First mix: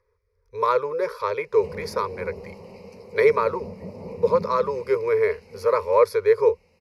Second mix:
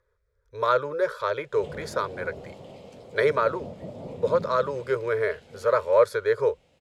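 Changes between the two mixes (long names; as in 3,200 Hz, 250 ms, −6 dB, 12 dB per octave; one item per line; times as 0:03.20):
background: remove Butterworth band-reject 3,400 Hz, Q 3.7
master: remove EQ curve with evenly spaced ripples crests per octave 0.85, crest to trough 12 dB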